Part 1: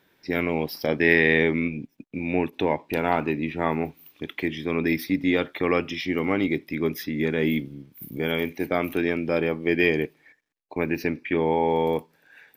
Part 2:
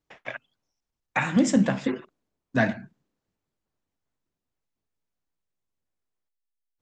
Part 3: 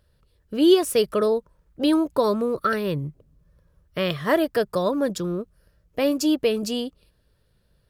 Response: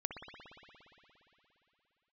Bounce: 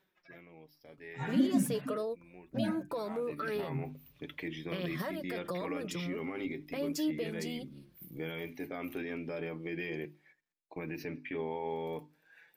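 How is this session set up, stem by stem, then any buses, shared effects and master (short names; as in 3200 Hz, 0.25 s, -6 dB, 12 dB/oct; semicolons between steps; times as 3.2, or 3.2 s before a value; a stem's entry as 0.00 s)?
-6.0 dB, 0.00 s, bus A, no send, auto duck -20 dB, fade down 0.30 s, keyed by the second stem
-3.5 dB, 0.00 s, no bus, no send, median-filter separation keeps harmonic
-1.0 dB, 0.75 s, bus A, no send, HPF 45 Hz 24 dB/oct; gate with hold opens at -55 dBFS; compressor 3:1, threshold -25 dBFS, peak gain reduction 10.5 dB
bus A: 0.0 dB, notches 50/100/150/200/250/300/350 Hz; limiter -24.5 dBFS, peak gain reduction 10.5 dB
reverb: off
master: flange 0.39 Hz, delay 5.2 ms, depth 2.5 ms, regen +33%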